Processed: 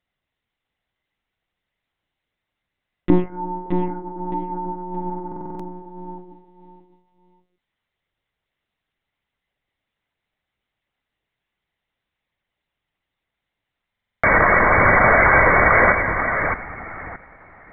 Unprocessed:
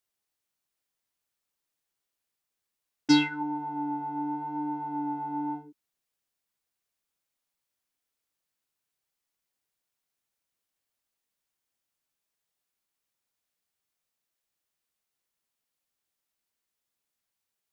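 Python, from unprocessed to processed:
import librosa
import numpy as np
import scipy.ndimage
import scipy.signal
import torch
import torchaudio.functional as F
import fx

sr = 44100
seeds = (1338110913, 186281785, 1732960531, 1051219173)

y = fx.env_lowpass_down(x, sr, base_hz=520.0, full_db=-32.5)
y = fx.peak_eq(y, sr, hz=120.0, db=-11.5, octaves=1.9)
y = fx.small_body(y, sr, hz=(400.0, 2000.0), ring_ms=25, db=9)
y = fx.spec_paint(y, sr, seeds[0], shape='noise', start_s=14.2, length_s=1.73, low_hz=270.0, high_hz=2300.0, level_db=-23.0)
y = fx.echo_feedback(y, sr, ms=618, feedback_pct=24, wet_db=-6.5)
y = fx.lpc_monotone(y, sr, seeds[1], pitch_hz=180.0, order=10)
y = fx.buffer_glitch(y, sr, at_s=(5.27, 13.91), block=2048, repeats=6)
y = F.gain(torch.from_numpy(y), 8.5).numpy()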